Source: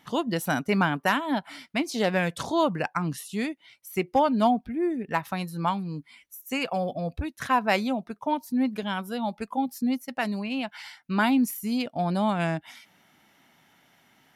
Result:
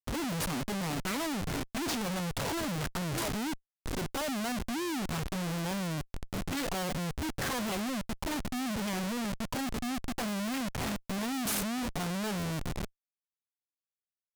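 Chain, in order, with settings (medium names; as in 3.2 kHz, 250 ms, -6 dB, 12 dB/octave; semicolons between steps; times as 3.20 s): harmonic-percussive split percussive -10 dB; peak limiter -23 dBFS, peak gain reduction 10 dB; hum notches 60/120 Hz; bit crusher 12-bit; tape echo 628 ms, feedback 48%, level -19 dB, low-pass 1.7 kHz; touch-sensitive flanger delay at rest 11.8 ms, full sweep at -28 dBFS; Schmitt trigger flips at -45 dBFS; treble shelf 3.6 kHz +6.5 dB; loudspeaker Doppler distortion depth 0.52 ms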